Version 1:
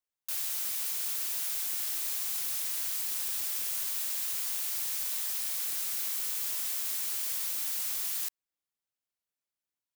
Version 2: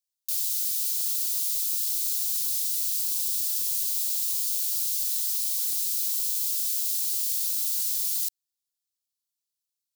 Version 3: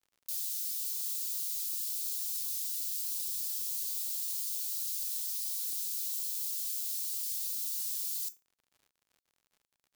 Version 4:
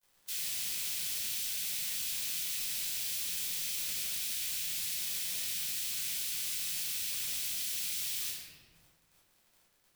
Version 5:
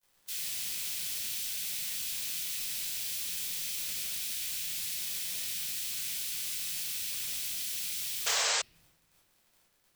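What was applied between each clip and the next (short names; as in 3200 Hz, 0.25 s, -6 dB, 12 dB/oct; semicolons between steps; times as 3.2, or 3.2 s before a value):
EQ curve 110 Hz 0 dB, 940 Hz -26 dB, 4200 Hz +9 dB; gain -3 dB
resonator 170 Hz, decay 0.22 s, harmonics odd, mix 70%; crackle 77/s -54 dBFS
spectral limiter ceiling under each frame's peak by 29 dB; shoebox room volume 430 m³, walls mixed, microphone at 5 m; compressor 1.5:1, threshold -50 dBFS, peak gain reduction 9.5 dB
painted sound noise, 8.26–8.62, 410–8300 Hz -29 dBFS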